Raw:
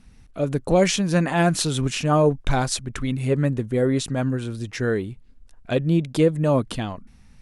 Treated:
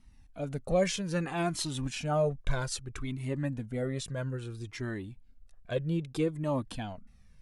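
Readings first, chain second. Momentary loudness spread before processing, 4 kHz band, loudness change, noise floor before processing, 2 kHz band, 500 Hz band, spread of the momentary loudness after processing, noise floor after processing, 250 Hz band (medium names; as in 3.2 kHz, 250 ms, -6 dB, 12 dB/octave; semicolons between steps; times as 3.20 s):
10 LU, -10.0 dB, -11.0 dB, -50 dBFS, -10.5 dB, -10.5 dB, 11 LU, -58 dBFS, -12.0 dB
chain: Shepard-style flanger falling 0.62 Hz; trim -6 dB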